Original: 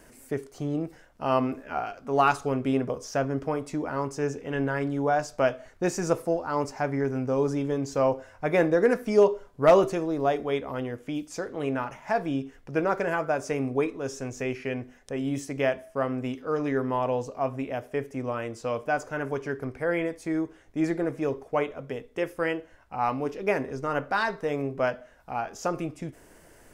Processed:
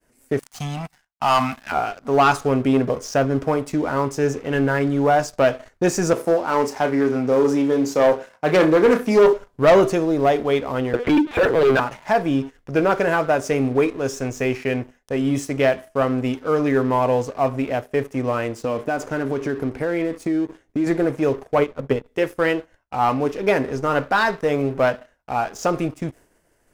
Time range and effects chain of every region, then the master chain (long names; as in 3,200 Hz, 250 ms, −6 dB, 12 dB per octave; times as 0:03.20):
0:00.39–0:01.72: Chebyshev band-stop filter 230–730 Hz, order 3 + low-shelf EQ 350 Hz −10.5 dB + leveller curve on the samples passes 2
0:06.13–0:09.33: phase distortion by the signal itself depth 0.14 ms + high-pass filter 160 Hz 24 dB per octave + flutter between parallel walls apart 5.5 metres, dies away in 0.21 s
0:10.93–0:11.80: linear-prediction vocoder at 8 kHz pitch kept + mid-hump overdrive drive 28 dB, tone 1,700 Hz, clips at −14.5 dBFS
0:18.58–0:20.87: parametric band 280 Hz +7 dB 1.3 octaves + downward compressor 4 to 1, threshold −28 dBFS
0:21.58–0:22.06: spectral tilt −1.5 dB per octave + notch filter 690 Hz, Q 5.6 + transient designer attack +7 dB, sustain −7 dB
whole clip: downward expander −47 dBFS; leveller curve on the samples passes 2; level +1 dB